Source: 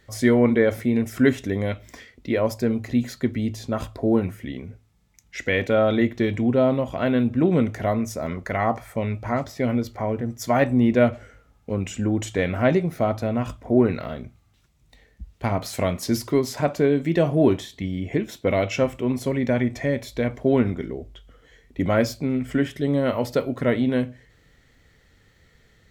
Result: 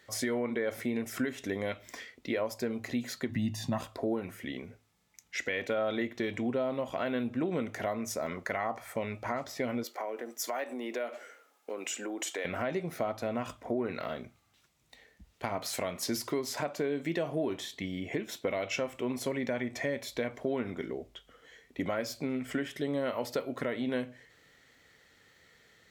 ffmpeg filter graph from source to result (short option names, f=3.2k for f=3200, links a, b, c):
-filter_complex "[0:a]asettb=1/sr,asplit=3[a][b][c];[a]atrim=end=3.294[d];[b]atrim=start=3.29:end=3.81,asetpts=PTS-STARTPTS,afade=t=in:d=0.004:c=qsin,afade=t=out:st=0.516:d=0.004:c=qsin,equalizer=f=140:t=o:w=1.2:g=11.5,aecho=1:1:1.1:0.86,atrim=end_sample=22932[e];[c]atrim=start=3.806[f];[d][e]acrossfade=d=0.004:c1=hsin:c2=qsin[g];[g][f]acrossfade=d=0.004:c1=qsin:c2=hsin,asettb=1/sr,asplit=3[h][i][j];[h]atrim=end=9.844[k];[i]atrim=start=9.84:end=12.45,asetpts=PTS-STARTPTS,afade=t=in:d=0.004:c=qsin,afade=t=out:st=2.606:d=0.004:c=qsin,highpass=f=310:w=0.5412,highpass=f=310:w=1.3066,highshelf=f=8.5k:g=7,acompressor=threshold=-30dB:ratio=3:attack=3.2:release=140:knee=1:detection=peak[l];[j]atrim=start=12.446[m];[k][l]acrossfade=d=0.004:c1=hsin:c2=qsin[n];[n][m]acrossfade=d=0.004:c1=qsin:c2=hsin,highpass=f=480:p=1,alimiter=limit=-16dB:level=0:latency=1:release=224,acompressor=threshold=-32dB:ratio=2"